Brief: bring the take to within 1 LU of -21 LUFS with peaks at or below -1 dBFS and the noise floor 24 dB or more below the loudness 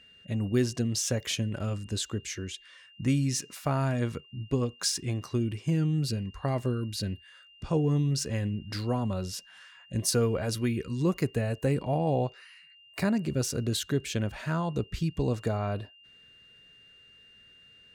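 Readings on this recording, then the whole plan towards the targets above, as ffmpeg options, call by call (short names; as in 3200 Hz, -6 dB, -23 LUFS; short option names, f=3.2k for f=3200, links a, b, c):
steady tone 2800 Hz; tone level -54 dBFS; loudness -30.0 LUFS; peak -14.0 dBFS; loudness target -21.0 LUFS
-> -af "bandreject=f=2.8k:w=30"
-af "volume=9dB"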